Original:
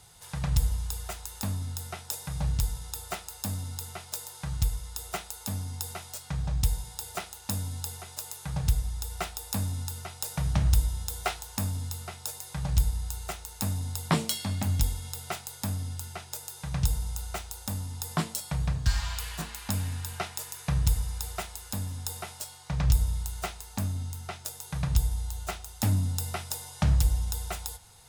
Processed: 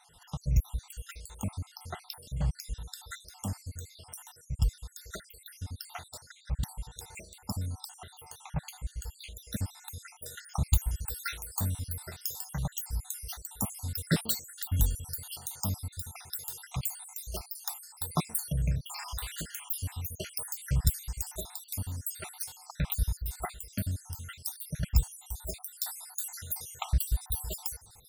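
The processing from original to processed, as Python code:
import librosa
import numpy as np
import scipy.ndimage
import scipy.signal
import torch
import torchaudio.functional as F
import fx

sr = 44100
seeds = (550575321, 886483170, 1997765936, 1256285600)

y = fx.spec_dropout(x, sr, seeds[0], share_pct=67)
y = fx.high_shelf(y, sr, hz=9800.0, db=fx.steps((0.0, -8.5), (9.43, -3.0), (10.44, 11.5)))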